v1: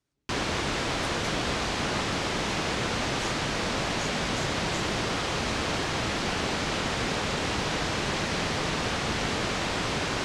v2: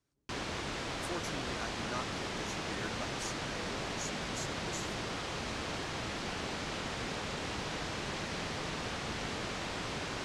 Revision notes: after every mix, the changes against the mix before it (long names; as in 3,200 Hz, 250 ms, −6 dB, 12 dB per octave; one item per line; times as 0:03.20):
background −9.5 dB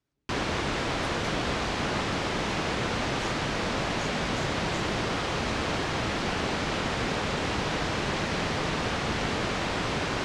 background +10.0 dB
master: add high-shelf EQ 4,500 Hz −7 dB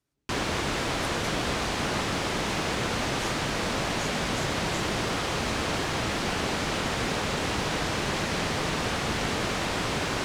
master: remove high-frequency loss of the air 62 metres